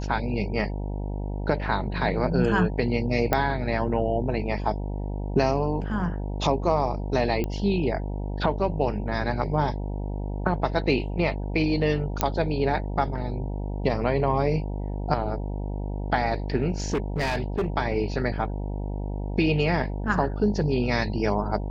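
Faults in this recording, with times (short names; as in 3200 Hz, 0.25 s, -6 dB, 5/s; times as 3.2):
buzz 50 Hz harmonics 19 -30 dBFS
3.33 pop -8 dBFS
7.44 pop -16 dBFS
12.21 pop -5 dBFS
16.8–17.66 clipped -21 dBFS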